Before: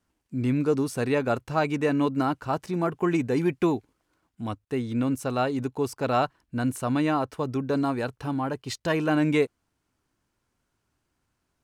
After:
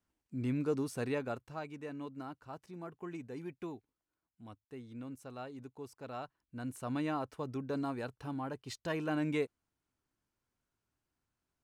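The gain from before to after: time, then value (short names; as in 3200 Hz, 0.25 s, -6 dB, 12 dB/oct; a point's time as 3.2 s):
1.06 s -9.5 dB
1.7 s -19.5 dB
6.24 s -19.5 dB
6.94 s -11 dB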